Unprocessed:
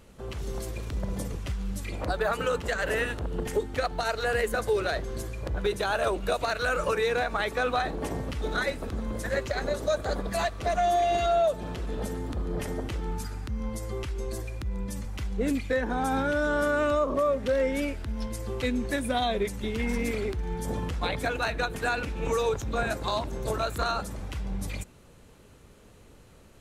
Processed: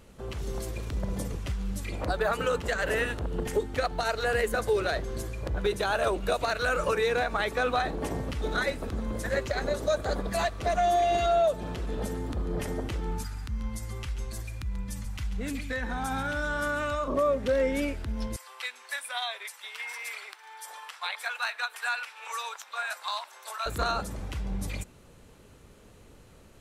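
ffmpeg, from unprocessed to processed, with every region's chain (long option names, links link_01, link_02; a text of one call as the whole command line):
ffmpeg -i in.wav -filter_complex "[0:a]asettb=1/sr,asplit=3[link_01][link_02][link_03];[link_01]atrim=end=13.234[link_04];[link_02]atrim=start=13.23:end=17.08,asetpts=PTS-STARTPTS,afade=type=in:duration=0.004:curve=qsin,afade=type=out:start_time=3.846:duration=0.004:curve=qsin,equalizer=frequency=420:width=0.94:gain=-12.5,aecho=1:1:137:0.251,atrim=end_sample=169785[link_05];[link_03]atrim=start=17.076[link_06];[link_04][link_05]acrossfade=duration=0.004:curve1=hsin:curve2=qsin[link_07];[link_07][link_06]acrossfade=duration=0.004:curve1=qsin:curve2=hsin,asettb=1/sr,asplit=3[link_08][link_09][link_10];[link_08]atrim=end=18.364[link_11];[link_09]atrim=start=18.36:end=23.66,asetpts=PTS-STARTPTS,afade=type=in:duration=0.004:curve=qsin,afade=type=out:start_time=5.296:duration=0.004:curve=qsin,highpass=frequency=930:width=0.5412,highpass=frequency=930:width=1.3066,bandreject=frequency=6600:width=11[link_12];[link_10]atrim=start=23.656[link_13];[link_11][link_12]acrossfade=duration=0.004:curve1=hsin:curve2=qsin[link_14];[link_14][link_13]acrossfade=duration=0.004:curve1=qsin:curve2=hsin" out.wav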